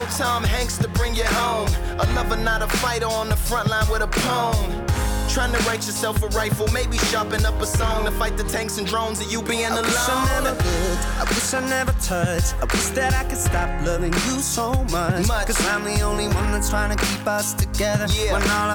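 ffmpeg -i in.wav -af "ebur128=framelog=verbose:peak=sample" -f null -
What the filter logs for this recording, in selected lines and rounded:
Integrated loudness:
  I:         -21.5 LUFS
  Threshold: -31.5 LUFS
Loudness range:
  LRA:         0.7 LU
  Threshold: -41.6 LUFS
  LRA low:   -21.9 LUFS
  LRA high:  -21.2 LUFS
Sample peak:
  Peak:      -10.8 dBFS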